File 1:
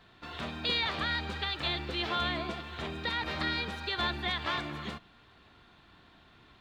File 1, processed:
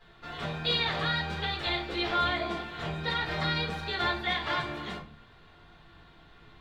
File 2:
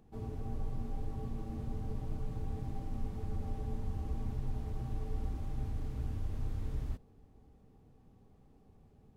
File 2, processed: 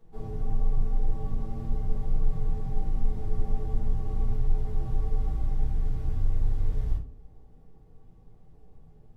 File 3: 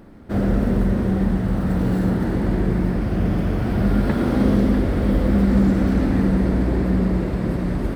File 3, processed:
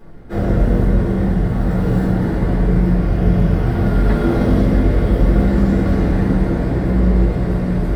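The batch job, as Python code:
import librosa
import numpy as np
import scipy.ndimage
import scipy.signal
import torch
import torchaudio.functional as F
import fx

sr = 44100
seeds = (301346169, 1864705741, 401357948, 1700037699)

y = fx.room_shoebox(x, sr, seeds[0], volume_m3=150.0, walls='furnished', distance_m=4.0)
y = y * 10.0 ** (-6.5 / 20.0)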